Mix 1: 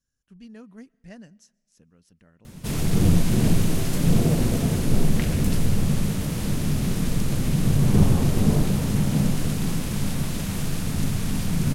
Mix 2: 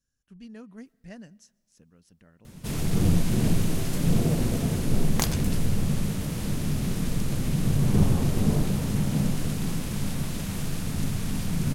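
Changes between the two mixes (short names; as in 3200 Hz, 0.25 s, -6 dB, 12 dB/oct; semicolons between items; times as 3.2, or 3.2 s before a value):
first sound -3.5 dB; second sound: remove Butterworth band-pass 2200 Hz, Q 1.5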